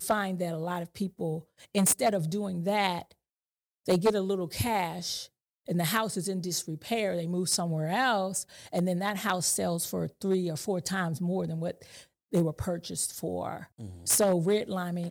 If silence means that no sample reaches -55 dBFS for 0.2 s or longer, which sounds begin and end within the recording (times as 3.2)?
3.86–5.28
5.66–12.05